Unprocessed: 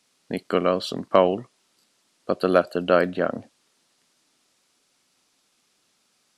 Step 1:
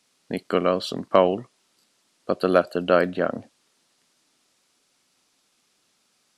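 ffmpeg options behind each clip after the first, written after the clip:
-af anull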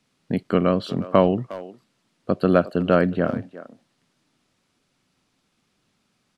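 -filter_complex "[0:a]bass=f=250:g=13,treble=f=4000:g=-8,asplit=2[s0][s1];[s1]adelay=360,highpass=300,lowpass=3400,asoftclip=type=hard:threshold=0.335,volume=0.178[s2];[s0][s2]amix=inputs=2:normalize=0,volume=0.891"

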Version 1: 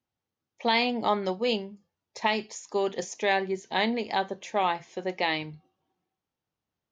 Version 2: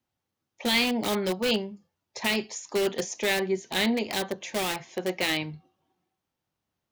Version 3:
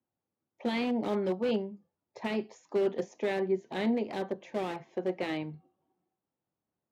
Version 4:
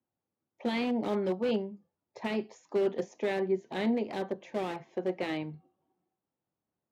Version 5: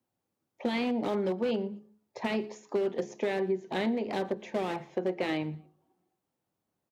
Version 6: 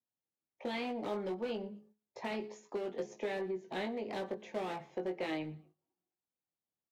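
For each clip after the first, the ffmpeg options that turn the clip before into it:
-filter_complex "[0:a]bandreject=f=450:w=15,acrossover=split=560|1600[s0][s1][s2];[s1]aeval=exprs='(mod(44.7*val(0)+1,2)-1)/44.7':c=same[s3];[s0][s3][s2]amix=inputs=3:normalize=0,volume=1.5"
-af "bandpass=f=350:t=q:w=0.54:csg=0,volume=0.841"
-af anull
-af "bandreject=f=70.53:t=h:w=4,bandreject=f=141.06:t=h:w=4,bandreject=f=211.59:t=h:w=4,bandreject=f=282.12:t=h:w=4,bandreject=f=352.65:t=h:w=4,bandreject=f=423.18:t=h:w=4,acompressor=threshold=0.0282:ratio=6,aecho=1:1:117|234:0.0794|0.0207,volume=1.78"
-filter_complex "[0:a]agate=range=0.282:threshold=0.00178:ratio=16:detection=peak,acrossover=split=330[s0][s1];[s0]asoftclip=type=tanh:threshold=0.02[s2];[s1]asplit=2[s3][s4];[s4]adelay=19,volume=0.562[s5];[s3][s5]amix=inputs=2:normalize=0[s6];[s2][s6]amix=inputs=2:normalize=0,volume=0.447"

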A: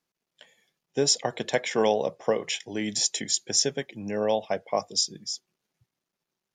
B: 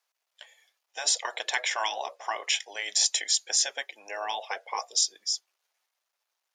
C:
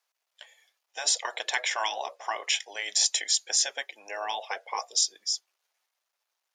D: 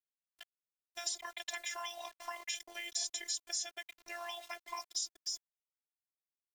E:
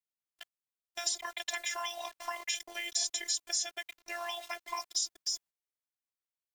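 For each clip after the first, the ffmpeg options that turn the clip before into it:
-af "afftfilt=real='re*lt(hypot(re,im),0.224)':imag='im*lt(hypot(re,im),0.224)':win_size=1024:overlap=0.75,highpass=f=630:w=0.5412,highpass=f=630:w=1.3066,volume=1.58"
-af anull
-filter_complex "[0:a]aeval=exprs='val(0)*gte(abs(val(0)),0.0075)':c=same,acrossover=split=1000|6700[s0][s1][s2];[s0]acompressor=threshold=0.00447:ratio=4[s3];[s1]acompressor=threshold=0.0141:ratio=4[s4];[s2]acompressor=threshold=0.0141:ratio=4[s5];[s3][s4][s5]amix=inputs=3:normalize=0,afftfilt=real='hypot(re,im)*cos(PI*b)':imag='0':win_size=512:overlap=0.75,volume=0.891"
-af "agate=range=0.355:threshold=0.00126:ratio=16:detection=peak,volume=1.78"

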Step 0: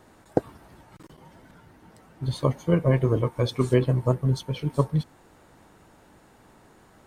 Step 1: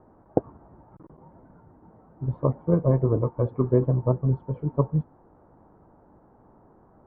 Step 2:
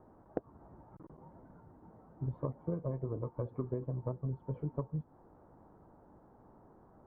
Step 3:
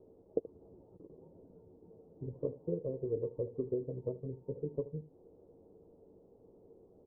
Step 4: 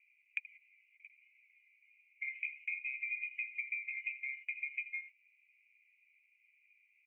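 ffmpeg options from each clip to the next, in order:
-af "lowpass=f=1100:w=0.5412,lowpass=f=1100:w=1.3066"
-af "acompressor=threshold=0.0398:ratio=16,volume=0.596"
-filter_complex "[0:a]lowpass=f=450:t=q:w=4.9,asplit=2[s0][s1];[s1]aecho=0:1:11|78:0.299|0.15[s2];[s0][s2]amix=inputs=2:normalize=0,volume=0.501"
-af "afftfilt=real='real(if(lt(b,920),b+92*(1-2*mod(floor(b/92),2)),b),0)':imag='imag(if(lt(b,920),b+92*(1-2*mod(floor(b/92),2)),b),0)':win_size=2048:overlap=0.75,agate=range=0.2:threshold=0.00282:ratio=16:detection=peak,acompressor=threshold=0.01:ratio=6,volume=1.5"

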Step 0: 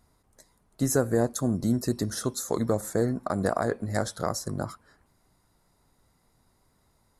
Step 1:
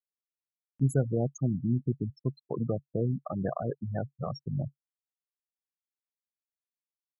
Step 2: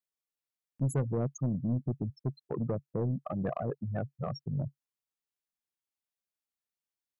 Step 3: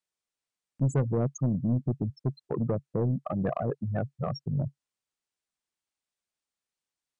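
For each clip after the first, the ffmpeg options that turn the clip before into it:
-af "afftfilt=real='re*gte(hypot(re,im),0.112)':imag='im*gte(hypot(re,im),0.112)':win_size=1024:overlap=0.75,equalizer=f=140:w=2.6:g=13,acompressor=mode=upward:threshold=0.01:ratio=2.5,volume=0.473"
-af "asoftclip=type=tanh:threshold=0.0668"
-af "volume=1.68" -ar 22050 -c:a libmp3lame -b:a 160k

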